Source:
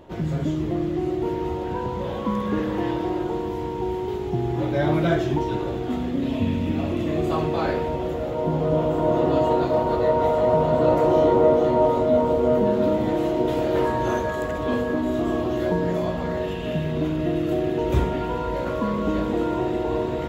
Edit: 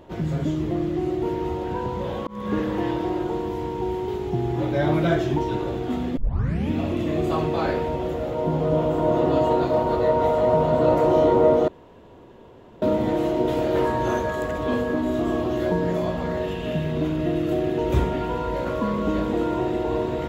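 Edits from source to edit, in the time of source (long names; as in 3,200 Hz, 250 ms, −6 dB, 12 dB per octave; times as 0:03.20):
0:02.27–0:02.53: fade in
0:06.17: tape start 0.53 s
0:11.68–0:12.82: fill with room tone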